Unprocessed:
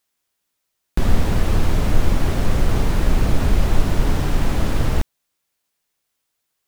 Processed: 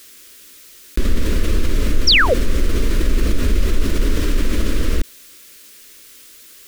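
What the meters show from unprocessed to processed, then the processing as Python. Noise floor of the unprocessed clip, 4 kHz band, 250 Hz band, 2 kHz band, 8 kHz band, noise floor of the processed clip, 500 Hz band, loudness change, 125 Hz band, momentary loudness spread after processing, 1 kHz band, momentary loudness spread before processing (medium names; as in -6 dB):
-76 dBFS, +13.0 dB, +0.5 dB, +9.5 dB, +4.5 dB, -43 dBFS, +3.0 dB, +2.5 dB, -2.5 dB, 11 LU, 0.0 dB, 3 LU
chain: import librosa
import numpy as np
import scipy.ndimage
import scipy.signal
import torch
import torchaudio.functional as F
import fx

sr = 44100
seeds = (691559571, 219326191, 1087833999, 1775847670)

y = fx.spec_paint(x, sr, seeds[0], shape='fall', start_s=2.07, length_s=0.27, low_hz=440.0, high_hz=6000.0, level_db=-10.0)
y = fx.fixed_phaser(y, sr, hz=330.0, stages=4)
y = fx.env_flatten(y, sr, amount_pct=50)
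y = y * 10.0 ** (-1.5 / 20.0)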